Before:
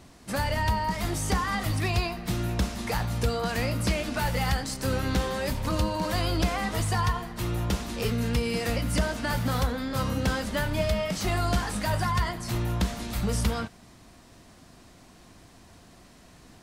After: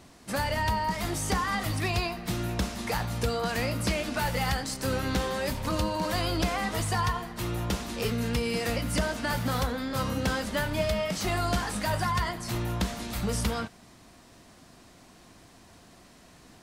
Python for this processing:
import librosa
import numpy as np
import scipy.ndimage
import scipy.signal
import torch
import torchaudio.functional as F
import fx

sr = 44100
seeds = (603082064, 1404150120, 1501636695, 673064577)

y = fx.low_shelf(x, sr, hz=130.0, db=-5.5)